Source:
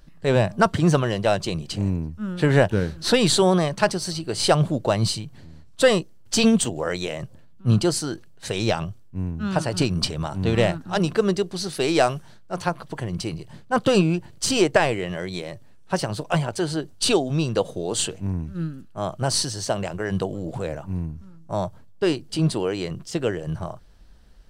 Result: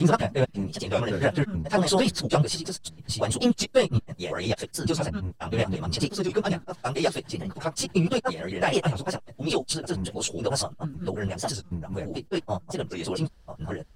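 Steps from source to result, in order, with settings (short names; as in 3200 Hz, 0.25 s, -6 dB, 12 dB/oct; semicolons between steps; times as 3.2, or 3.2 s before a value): slices in reverse order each 0.194 s, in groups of 5; plain phase-vocoder stretch 0.57×; record warp 45 rpm, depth 160 cents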